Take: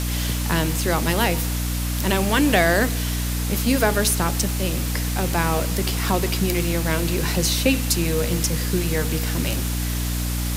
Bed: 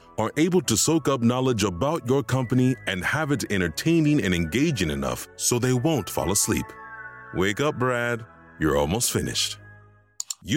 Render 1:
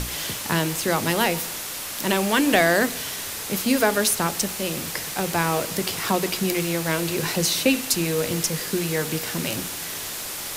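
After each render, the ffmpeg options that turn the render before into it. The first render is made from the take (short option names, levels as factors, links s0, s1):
-af "bandreject=f=60:t=h:w=6,bandreject=f=120:t=h:w=6,bandreject=f=180:t=h:w=6,bandreject=f=240:t=h:w=6,bandreject=f=300:t=h:w=6"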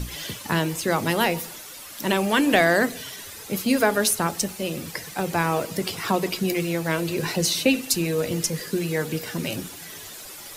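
-af "afftdn=nr=11:nf=-32"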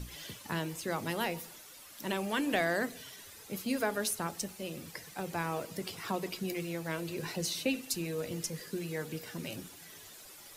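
-af "volume=0.251"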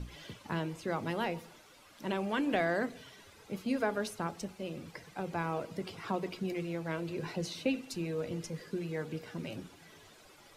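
-af "aemphasis=mode=reproduction:type=75fm,bandreject=f=1800:w=19"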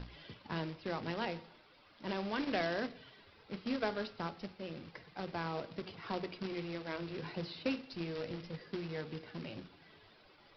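-af "aresample=11025,acrusher=bits=2:mode=log:mix=0:aa=0.000001,aresample=44100,flanger=delay=7.7:depth=2.5:regen=-88:speed=0.33:shape=sinusoidal"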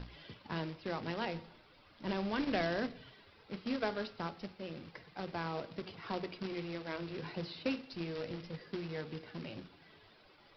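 -filter_complex "[0:a]asettb=1/sr,asplit=3[s0][s1][s2];[s0]atrim=end=1.344[s3];[s1]atrim=start=1.34:end=3.15,asetpts=PTS-STARTPTS,afade=t=in:d=0.004:c=qsin,afade=t=out:st=1.806:d=0.004:c=qsin,lowshelf=f=160:g=8.5[s4];[s2]atrim=start=3.146[s5];[s3][s4]acrossfade=d=0.004:c1=hsin:c2=qsin[s6];[s6][s5]acrossfade=d=0.004:c1=qsin:c2=hsin"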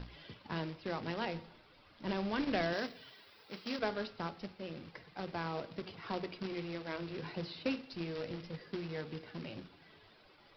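-filter_complex "[0:a]asettb=1/sr,asplit=3[s0][s1][s2];[s0]atrim=end=2.734[s3];[s1]atrim=start=2.73:end=3.79,asetpts=PTS-STARTPTS,afade=t=in:d=0.004:c=qsin,afade=t=out:st=1.056:d=0.004:c=qsin,aemphasis=mode=production:type=bsi[s4];[s2]atrim=start=3.786[s5];[s3][s4]acrossfade=d=0.004:c1=hsin:c2=qsin[s6];[s6][s5]acrossfade=d=0.004:c1=qsin:c2=hsin"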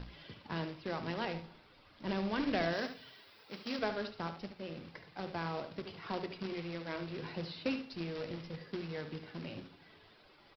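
-af "aecho=1:1:72:0.316"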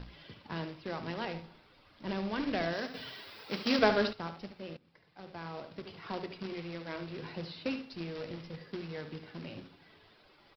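-filter_complex "[0:a]asplit=4[s0][s1][s2][s3];[s0]atrim=end=2.942[s4];[s1]atrim=start=2.938:end=4.132,asetpts=PTS-STARTPTS,volume=3.16[s5];[s2]atrim=start=4.128:end=4.77,asetpts=PTS-STARTPTS,afade=t=out:st=0.638:d=0.004:c=hsin:silence=0.0794328[s6];[s3]atrim=start=4.77,asetpts=PTS-STARTPTS,afade=t=in:d=1.22:silence=0.0794328[s7];[s4][s5]acrossfade=d=0.004:c1=hsin:c2=hsin[s8];[s6][s7]concat=n=2:v=0:a=1[s9];[s8][s9]acrossfade=d=0.004:c1=hsin:c2=hsin"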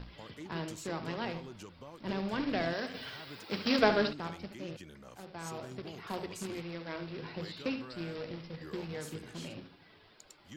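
-filter_complex "[1:a]volume=0.0501[s0];[0:a][s0]amix=inputs=2:normalize=0"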